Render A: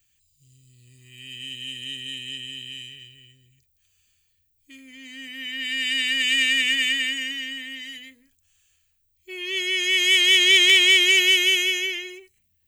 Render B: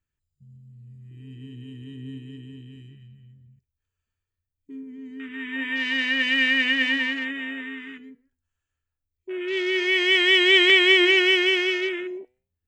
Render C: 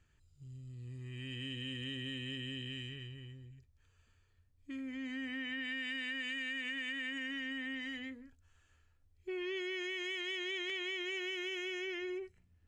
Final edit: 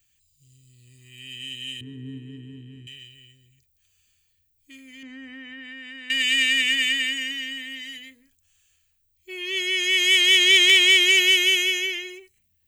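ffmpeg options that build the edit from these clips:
-filter_complex "[0:a]asplit=3[s0][s1][s2];[s0]atrim=end=1.812[s3];[1:a]atrim=start=1.808:end=2.872[s4];[s1]atrim=start=2.868:end=5.032[s5];[2:a]atrim=start=5.028:end=6.102[s6];[s2]atrim=start=6.098[s7];[s3][s4]acrossfade=d=0.004:c1=hsin:c2=hsin[s8];[s8][s5]acrossfade=d=0.004:c1=hsin:c2=hsin[s9];[s9][s6]acrossfade=d=0.004:c1=hsin:c2=hsin[s10];[s10][s7]acrossfade=d=0.004:c1=hsin:c2=hsin"

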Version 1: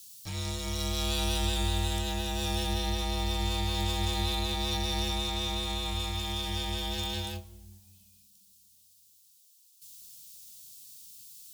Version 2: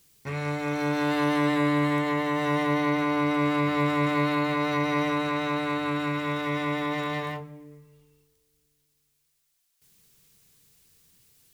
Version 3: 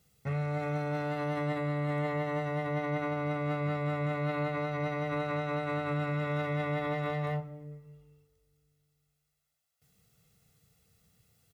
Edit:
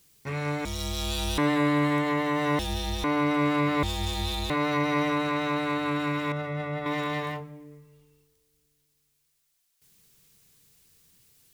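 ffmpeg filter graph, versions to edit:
-filter_complex "[0:a]asplit=3[s0][s1][s2];[1:a]asplit=5[s3][s4][s5][s6][s7];[s3]atrim=end=0.652[s8];[s0]atrim=start=0.648:end=1.382[s9];[s4]atrim=start=1.378:end=2.592[s10];[s1]atrim=start=2.588:end=3.042[s11];[s5]atrim=start=3.038:end=3.832[s12];[s2]atrim=start=3.828:end=4.502[s13];[s6]atrim=start=4.498:end=6.322[s14];[2:a]atrim=start=6.318:end=6.862[s15];[s7]atrim=start=6.858[s16];[s8][s9]acrossfade=d=0.004:c1=hsin:c2=hsin[s17];[s17][s10]acrossfade=d=0.004:c1=hsin:c2=hsin[s18];[s18][s11]acrossfade=d=0.004:c1=hsin:c2=hsin[s19];[s19][s12]acrossfade=d=0.004:c1=hsin:c2=hsin[s20];[s20][s13]acrossfade=d=0.004:c1=hsin:c2=hsin[s21];[s21][s14]acrossfade=d=0.004:c1=hsin:c2=hsin[s22];[s22][s15]acrossfade=d=0.004:c1=hsin:c2=hsin[s23];[s23][s16]acrossfade=d=0.004:c1=hsin:c2=hsin"

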